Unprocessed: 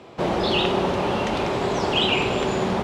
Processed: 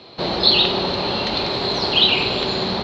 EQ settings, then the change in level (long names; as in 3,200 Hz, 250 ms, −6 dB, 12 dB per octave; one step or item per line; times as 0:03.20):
low-pass with resonance 4,200 Hz, resonance Q 16
−1.0 dB